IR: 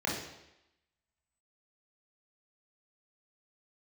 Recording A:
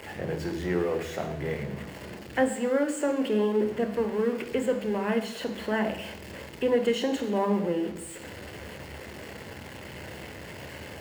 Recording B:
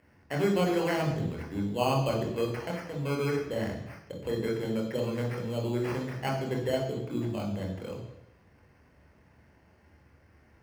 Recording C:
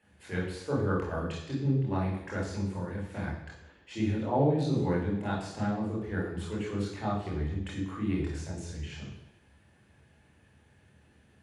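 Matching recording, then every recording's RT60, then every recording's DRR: C; 0.90, 0.90, 0.90 seconds; 7.0, −0.5, −4.5 decibels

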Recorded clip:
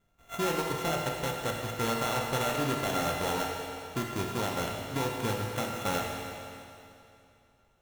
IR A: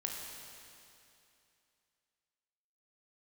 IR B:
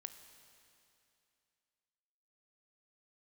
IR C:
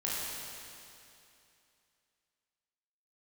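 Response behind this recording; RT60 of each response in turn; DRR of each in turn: A; 2.7, 2.7, 2.7 seconds; −0.5, 8.5, −7.5 decibels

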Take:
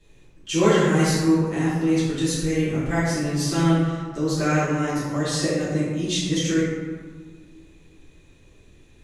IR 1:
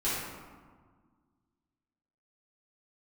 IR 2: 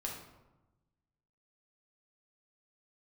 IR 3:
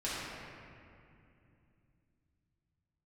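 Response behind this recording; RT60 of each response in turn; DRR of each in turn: 1; 1.6, 1.1, 2.6 seconds; −12.0, −2.0, −10.5 decibels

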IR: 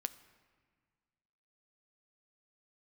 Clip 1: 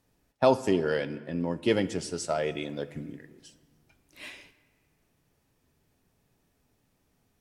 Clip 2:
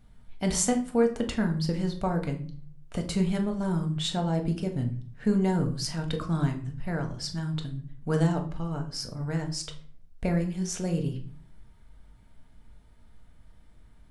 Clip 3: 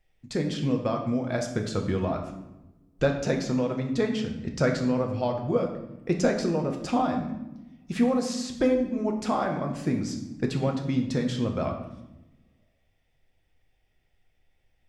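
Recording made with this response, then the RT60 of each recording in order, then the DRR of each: 1; 1.7, 0.50, 1.0 seconds; 11.5, 3.0, 2.0 decibels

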